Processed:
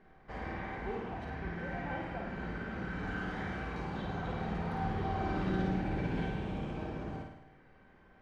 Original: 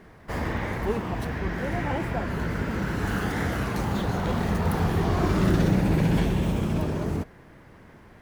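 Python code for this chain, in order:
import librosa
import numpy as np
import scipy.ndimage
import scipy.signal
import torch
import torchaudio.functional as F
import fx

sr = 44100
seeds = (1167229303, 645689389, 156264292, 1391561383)

p1 = scipy.signal.sosfilt(scipy.signal.butter(2, 3400.0, 'lowpass', fs=sr, output='sos'), x)
p2 = fx.peak_eq(p1, sr, hz=99.0, db=-5.0, octaves=0.74)
p3 = fx.comb_fb(p2, sr, f0_hz=780.0, decay_s=0.16, harmonics='all', damping=0.0, mix_pct=80)
y = p3 + fx.room_flutter(p3, sr, wall_m=9.1, rt60_s=0.8, dry=0)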